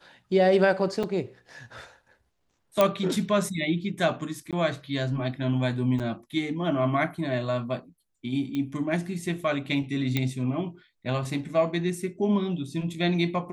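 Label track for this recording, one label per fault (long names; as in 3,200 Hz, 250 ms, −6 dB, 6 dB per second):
1.030000	1.040000	drop-out 5.2 ms
2.810000	2.810000	click −7 dBFS
4.510000	4.530000	drop-out 17 ms
5.990000	6.000000	drop-out 7.4 ms
8.550000	8.550000	click −20 dBFS
10.170000	10.170000	click −12 dBFS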